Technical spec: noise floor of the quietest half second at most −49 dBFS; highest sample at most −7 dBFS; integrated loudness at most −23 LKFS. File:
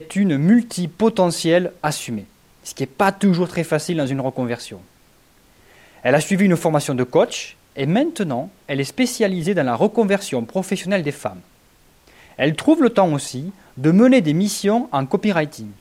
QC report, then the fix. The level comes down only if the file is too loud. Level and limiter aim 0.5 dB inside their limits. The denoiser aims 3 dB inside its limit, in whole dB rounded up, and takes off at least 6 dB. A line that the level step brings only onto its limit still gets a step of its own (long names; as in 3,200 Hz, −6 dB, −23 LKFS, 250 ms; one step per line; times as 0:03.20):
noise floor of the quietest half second −54 dBFS: in spec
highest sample −3.5 dBFS: out of spec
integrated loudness −19.0 LKFS: out of spec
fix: level −4.5 dB